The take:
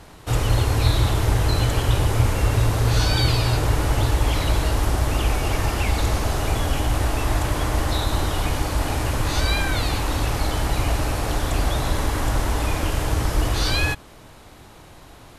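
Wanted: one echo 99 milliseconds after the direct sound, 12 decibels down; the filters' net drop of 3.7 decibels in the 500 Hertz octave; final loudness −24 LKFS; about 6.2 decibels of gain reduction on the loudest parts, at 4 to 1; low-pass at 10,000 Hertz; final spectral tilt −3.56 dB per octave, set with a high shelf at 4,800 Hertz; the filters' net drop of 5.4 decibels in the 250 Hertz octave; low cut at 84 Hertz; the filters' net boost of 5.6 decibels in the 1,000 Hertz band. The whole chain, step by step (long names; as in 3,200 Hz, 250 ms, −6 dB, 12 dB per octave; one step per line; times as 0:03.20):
high-pass filter 84 Hz
low-pass filter 10,000 Hz
parametric band 250 Hz −6 dB
parametric band 500 Hz −6.5 dB
parametric band 1,000 Hz +9 dB
high-shelf EQ 4,800 Hz +3 dB
downward compressor 4 to 1, threshold −24 dBFS
single-tap delay 99 ms −12 dB
level +3 dB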